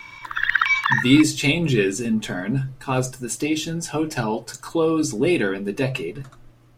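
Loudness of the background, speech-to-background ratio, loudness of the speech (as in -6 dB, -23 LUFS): -20.5 LUFS, -1.5 dB, -22.0 LUFS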